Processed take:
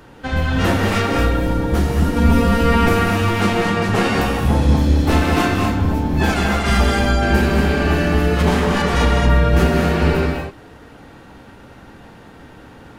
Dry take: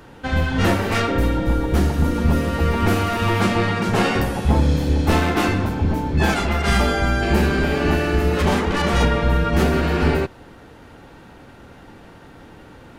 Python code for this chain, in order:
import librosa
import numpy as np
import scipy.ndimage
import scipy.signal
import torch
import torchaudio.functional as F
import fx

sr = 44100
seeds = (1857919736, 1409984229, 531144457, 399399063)

y = fx.comb(x, sr, ms=4.3, depth=0.92, at=(2.16, 2.89))
y = fx.rev_gated(y, sr, seeds[0], gate_ms=260, shape='rising', drr_db=2.0)